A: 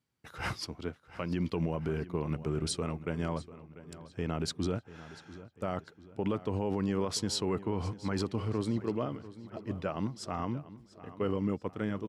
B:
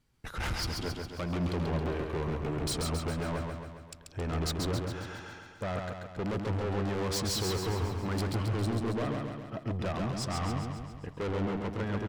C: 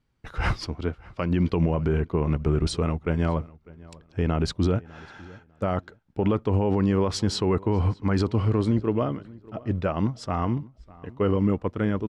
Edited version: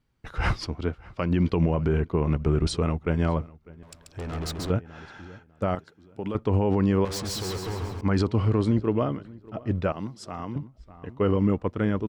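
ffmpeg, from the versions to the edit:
-filter_complex "[1:a]asplit=2[s0][s1];[0:a]asplit=2[s2][s3];[2:a]asplit=5[s4][s5][s6][s7][s8];[s4]atrim=end=3.832[s9];[s0]atrim=start=3.828:end=4.702[s10];[s5]atrim=start=4.698:end=5.752[s11];[s2]atrim=start=5.748:end=6.352[s12];[s6]atrim=start=6.348:end=7.052[s13];[s1]atrim=start=7.048:end=8.012[s14];[s7]atrim=start=8.008:end=9.922[s15];[s3]atrim=start=9.918:end=10.562[s16];[s8]atrim=start=10.558[s17];[s9][s10]acrossfade=d=0.004:c1=hsin:c2=hsin[s18];[s18][s11]acrossfade=d=0.004:c1=hsin:c2=hsin[s19];[s19][s12]acrossfade=d=0.004:c1=hsin:c2=hsin[s20];[s20][s13]acrossfade=d=0.004:c1=hsin:c2=hsin[s21];[s21][s14]acrossfade=d=0.004:c1=hsin:c2=hsin[s22];[s22][s15]acrossfade=d=0.004:c1=hsin:c2=hsin[s23];[s23][s16]acrossfade=d=0.004:c1=hsin:c2=hsin[s24];[s24][s17]acrossfade=d=0.004:c1=hsin:c2=hsin"

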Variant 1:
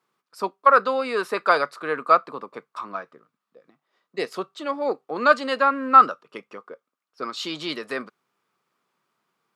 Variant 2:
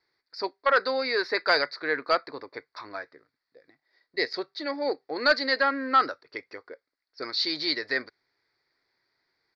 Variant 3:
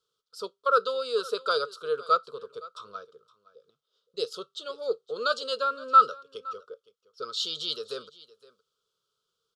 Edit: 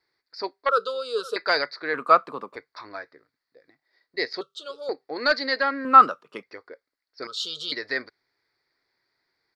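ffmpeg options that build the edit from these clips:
-filter_complex "[2:a]asplit=3[s0][s1][s2];[0:a]asplit=2[s3][s4];[1:a]asplit=6[s5][s6][s7][s8][s9][s10];[s5]atrim=end=0.692[s11];[s0]atrim=start=0.688:end=1.362[s12];[s6]atrim=start=1.358:end=1.942[s13];[s3]atrim=start=1.938:end=2.562[s14];[s7]atrim=start=2.558:end=4.412[s15];[s1]atrim=start=4.408:end=4.892[s16];[s8]atrim=start=4.888:end=5.852[s17];[s4]atrim=start=5.848:end=6.432[s18];[s9]atrim=start=6.428:end=7.272[s19];[s2]atrim=start=7.268:end=7.722[s20];[s10]atrim=start=7.718[s21];[s11][s12]acrossfade=d=0.004:c1=hsin:c2=hsin[s22];[s22][s13]acrossfade=d=0.004:c1=hsin:c2=hsin[s23];[s23][s14]acrossfade=d=0.004:c1=hsin:c2=hsin[s24];[s24][s15]acrossfade=d=0.004:c1=hsin:c2=hsin[s25];[s25][s16]acrossfade=d=0.004:c1=hsin:c2=hsin[s26];[s26][s17]acrossfade=d=0.004:c1=hsin:c2=hsin[s27];[s27][s18]acrossfade=d=0.004:c1=hsin:c2=hsin[s28];[s28][s19]acrossfade=d=0.004:c1=hsin:c2=hsin[s29];[s29][s20]acrossfade=d=0.004:c1=hsin:c2=hsin[s30];[s30][s21]acrossfade=d=0.004:c1=hsin:c2=hsin"

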